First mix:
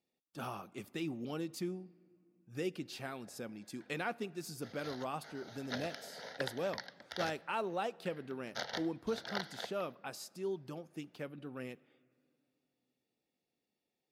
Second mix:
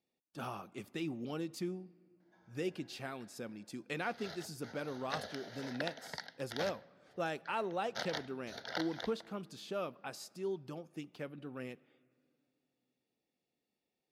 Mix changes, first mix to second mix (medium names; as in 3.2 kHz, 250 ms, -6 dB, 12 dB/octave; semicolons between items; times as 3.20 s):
speech: add treble shelf 12 kHz -7 dB; background: entry -0.60 s